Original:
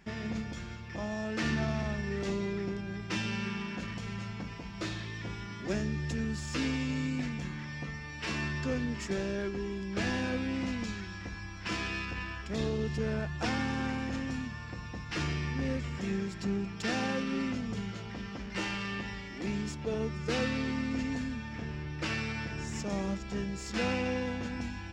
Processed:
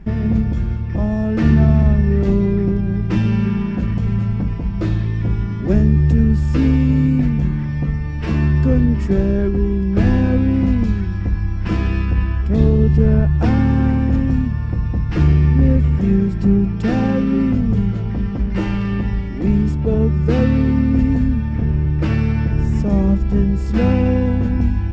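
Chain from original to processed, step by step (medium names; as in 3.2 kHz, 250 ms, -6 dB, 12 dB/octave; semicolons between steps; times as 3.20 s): tilt EQ -4.5 dB/octave; trim +8 dB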